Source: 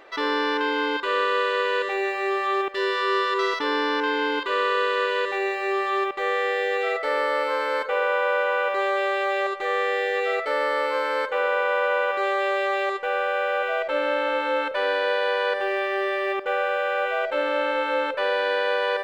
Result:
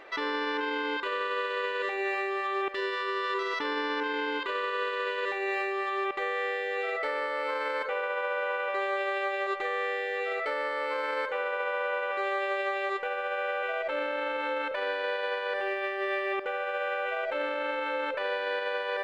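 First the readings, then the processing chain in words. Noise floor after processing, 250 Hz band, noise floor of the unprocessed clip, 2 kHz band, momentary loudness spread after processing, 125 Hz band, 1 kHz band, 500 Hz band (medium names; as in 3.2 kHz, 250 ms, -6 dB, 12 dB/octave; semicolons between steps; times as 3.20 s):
-33 dBFS, -7.0 dB, -30 dBFS, -6.0 dB, 1 LU, no reading, -7.0 dB, -7.5 dB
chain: peaking EQ 2.2 kHz +3.5 dB 0.77 oct; peak limiter -21.5 dBFS, peak gain reduction 10.5 dB; treble shelf 5.6 kHz -4.5 dB; trim -1 dB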